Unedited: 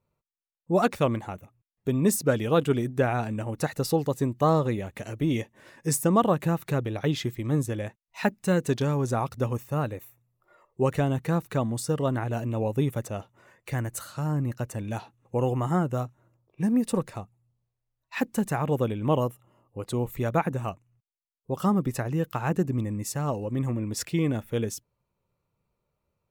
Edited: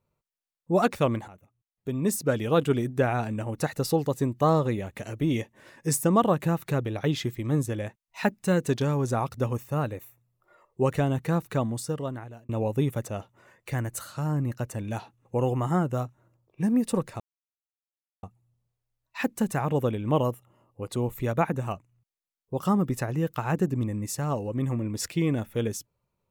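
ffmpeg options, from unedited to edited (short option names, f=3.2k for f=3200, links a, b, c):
-filter_complex "[0:a]asplit=4[a][b][c][d];[a]atrim=end=1.28,asetpts=PTS-STARTPTS,afade=t=out:st=1.276:d=0.004:c=hsin:silence=0.199526[e];[b]atrim=start=1.28:end=12.49,asetpts=PTS-STARTPTS,afade=t=in:d=1.32:silence=0.199526,afade=t=out:st=10.33:d=0.88[f];[c]atrim=start=12.49:end=17.2,asetpts=PTS-STARTPTS,afade=t=in:d=0.004:c=hsin,afade=t=out:st=4.706:d=0.004:c=hsin,apad=pad_dur=1.03[g];[d]atrim=start=17.2,asetpts=PTS-STARTPTS,afade=t=in:d=0.004:c=hsin[h];[e][f][g][h]concat=n=4:v=0:a=1"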